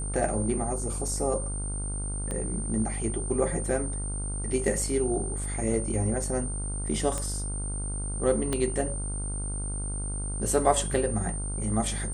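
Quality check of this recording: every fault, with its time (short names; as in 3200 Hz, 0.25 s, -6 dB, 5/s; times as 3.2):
buzz 50 Hz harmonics 31 -33 dBFS
tone 8900 Hz -35 dBFS
2.31 pop -21 dBFS
7.18 pop -18 dBFS
8.53 pop -14 dBFS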